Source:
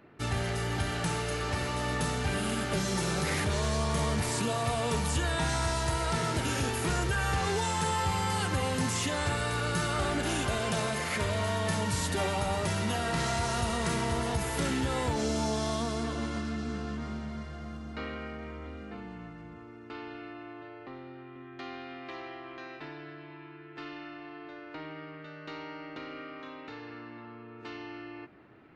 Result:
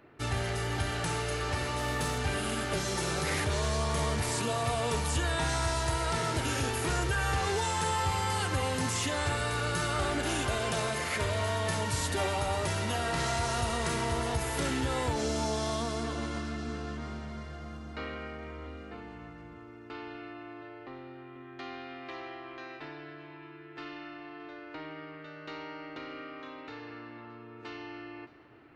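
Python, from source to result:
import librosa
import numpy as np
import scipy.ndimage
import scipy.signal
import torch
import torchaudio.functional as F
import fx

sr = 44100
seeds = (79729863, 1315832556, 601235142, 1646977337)

y = fx.cvsd(x, sr, bps=64000, at=(1.78, 2.18))
y = fx.peak_eq(y, sr, hz=190.0, db=-9.0, octaves=0.43)
y = y + 10.0 ** (-21.5 / 20.0) * np.pad(y, (int(619 * sr / 1000.0), 0))[:len(y)]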